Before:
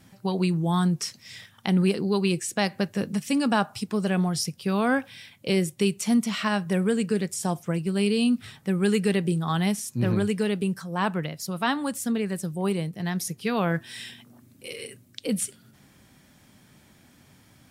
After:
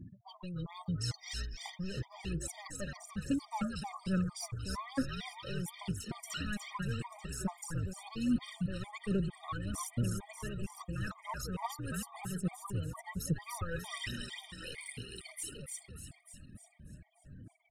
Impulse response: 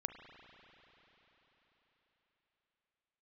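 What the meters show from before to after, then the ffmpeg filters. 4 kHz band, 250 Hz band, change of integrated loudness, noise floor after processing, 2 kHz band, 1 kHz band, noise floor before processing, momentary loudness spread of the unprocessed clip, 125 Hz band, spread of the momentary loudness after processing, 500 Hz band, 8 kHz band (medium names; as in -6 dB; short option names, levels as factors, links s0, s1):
-11.0 dB, -13.5 dB, -13.0 dB, -63 dBFS, -12.5 dB, -12.5 dB, -57 dBFS, 10 LU, -9.5 dB, 13 LU, -18.5 dB, -9.5 dB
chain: -filter_complex "[0:a]asoftclip=type=tanh:threshold=0.0708,areverse,acompressor=threshold=0.01:ratio=5,areverse,aeval=exprs='val(0)+0.000355*sin(2*PI*700*n/s)':c=same,afftfilt=real='re*gte(hypot(re,im),0.00282)':imag='im*gte(hypot(re,im),0.00282)':win_size=1024:overlap=0.75,equalizer=f=720:w=7.8:g=-9.5,aphaser=in_gain=1:out_gain=1:delay=2:decay=0.73:speed=1.2:type=triangular,asplit=8[s0][s1][s2][s3][s4][s5][s6][s7];[s1]adelay=296,afreqshift=-61,volume=0.631[s8];[s2]adelay=592,afreqshift=-122,volume=0.339[s9];[s3]adelay=888,afreqshift=-183,volume=0.184[s10];[s4]adelay=1184,afreqshift=-244,volume=0.0989[s11];[s5]adelay=1480,afreqshift=-305,volume=0.0537[s12];[s6]adelay=1776,afreqshift=-366,volume=0.0288[s13];[s7]adelay=2072,afreqshift=-427,volume=0.0157[s14];[s0][s8][s9][s10][s11][s12][s13][s14]amix=inputs=8:normalize=0,adynamicequalizer=threshold=0.00112:dfrequency=1300:dqfactor=3.1:tfrequency=1300:tqfactor=3.1:attack=5:release=100:ratio=0.375:range=2.5:mode=boostabove:tftype=bell,afftfilt=real='re*gt(sin(2*PI*2.2*pts/sr)*(1-2*mod(floor(b*sr/1024/620),2)),0)':imag='im*gt(sin(2*PI*2.2*pts/sr)*(1-2*mod(floor(b*sr/1024/620),2)),0)':win_size=1024:overlap=0.75"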